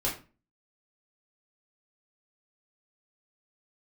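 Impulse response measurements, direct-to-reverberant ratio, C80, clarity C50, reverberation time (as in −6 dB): −5.5 dB, 13.5 dB, 8.5 dB, 0.35 s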